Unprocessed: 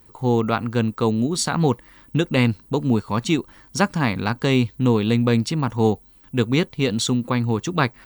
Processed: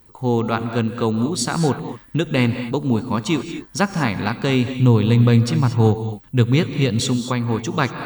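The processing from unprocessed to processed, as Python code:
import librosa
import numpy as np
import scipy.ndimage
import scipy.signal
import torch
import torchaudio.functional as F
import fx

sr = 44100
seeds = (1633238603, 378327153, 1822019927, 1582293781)

y = fx.peak_eq(x, sr, hz=120.0, db=9.0, octaves=0.63, at=(4.75, 7.0))
y = fx.rev_gated(y, sr, seeds[0], gate_ms=260, shape='rising', drr_db=8.5)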